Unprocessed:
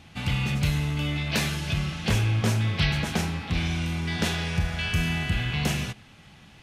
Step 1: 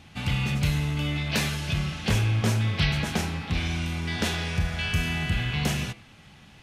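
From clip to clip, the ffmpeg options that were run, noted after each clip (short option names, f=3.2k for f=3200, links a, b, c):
-af "bandreject=f=166.8:t=h:w=4,bandreject=f=333.6:t=h:w=4,bandreject=f=500.4:t=h:w=4,bandreject=f=667.2:t=h:w=4,bandreject=f=834:t=h:w=4,bandreject=f=1.0008k:t=h:w=4,bandreject=f=1.1676k:t=h:w=4,bandreject=f=1.3344k:t=h:w=4,bandreject=f=1.5012k:t=h:w=4,bandreject=f=1.668k:t=h:w=4,bandreject=f=1.8348k:t=h:w=4,bandreject=f=2.0016k:t=h:w=4,bandreject=f=2.1684k:t=h:w=4,bandreject=f=2.3352k:t=h:w=4,bandreject=f=2.502k:t=h:w=4,bandreject=f=2.6688k:t=h:w=4,bandreject=f=2.8356k:t=h:w=4,bandreject=f=3.0024k:t=h:w=4,bandreject=f=3.1692k:t=h:w=4,bandreject=f=3.336k:t=h:w=4,bandreject=f=3.5028k:t=h:w=4,bandreject=f=3.6696k:t=h:w=4,bandreject=f=3.8364k:t=h:w=4,bandreject=f=4.0032k:t=h:w=4,bandreject=f=4.17k:t=h:w=4,bandreject=f=4.3368k:t=h:w=4,bandreject=f=4.5036k:t=h:w=4,bandreject=f=4.6704k:t=h:w=4"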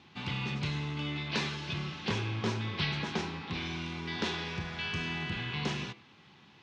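-af "highpass=140,equalizer=f=370:t=q:w=4:g=7,equalizer=f=630:t=q:w=4:g=-5,equalizer=f=1k:t=q:w=4:g=7,equalizer=f=3.8k:t=q:w=4:g=3,lowpass=f=5.7k:w=0.5412,lowpass=f=5.7k:w=1.3066,volume=-6.5dB"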